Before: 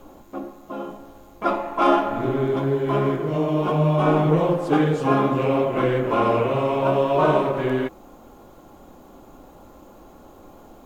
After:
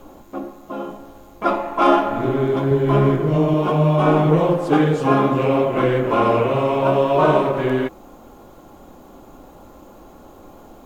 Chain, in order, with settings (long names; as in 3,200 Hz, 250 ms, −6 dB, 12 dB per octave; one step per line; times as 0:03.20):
0:02.71–0:03.54: low-shelf EQ 150 Hz +10.5 dB
level +3 dB